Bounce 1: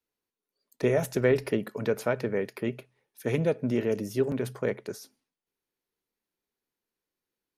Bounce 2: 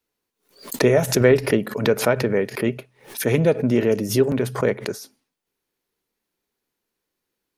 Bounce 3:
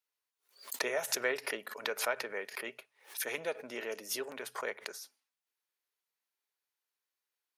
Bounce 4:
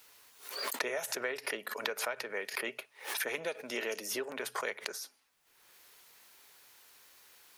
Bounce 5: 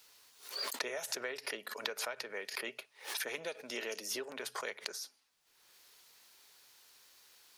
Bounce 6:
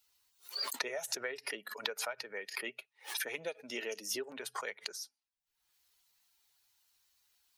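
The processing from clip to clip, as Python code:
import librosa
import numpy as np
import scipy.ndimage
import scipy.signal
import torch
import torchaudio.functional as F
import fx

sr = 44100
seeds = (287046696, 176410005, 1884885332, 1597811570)

y1 = fx.pre_swell(x, sr, db_per_s=140.0)
y1 = F.gain(torch.from_numpy(y1), 8.0).numpy()
y2 = scipy.signal.sosfilt(scipy.signal.butter(2, 870.0, 'highpass', fs=sr, output='sos'), y1)
y2 = F.gain(torch.from_numpy(y2), -8.5).numpy()
y3 = fx.band_squash(y2, sr, depth_pct=100)
y4 = fx.curve_eq(y3, sr, hz=(2200.0, 4600.0, 14000.0), db=(0, 6, -1))
y4 = F.gain(torch.from_numpy(y4), -4.5).numpy()
y5 = fx.bin_expand(y4, sr, power=1.5)
y5 = F.gain(torch.from_numpy(y5), 3.5).numpy()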